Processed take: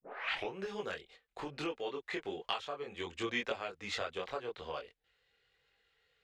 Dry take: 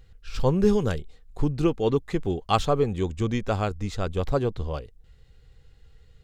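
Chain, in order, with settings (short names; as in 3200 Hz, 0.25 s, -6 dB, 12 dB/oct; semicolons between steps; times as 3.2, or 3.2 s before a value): tape start at the beginning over 0.55 s; three-band isolator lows -17 dB, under 440 Hz, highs -13 dB, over 2300 Hz; compressor 12:1, threshold -37 dBFS, peak gain reduction 20.5 dB; chorus voices 4, 1.1 Hz, delay 23 ms, depth 3 ms; gate -59 dBFS, range -10 dB; weighting filter D; gain +5 dB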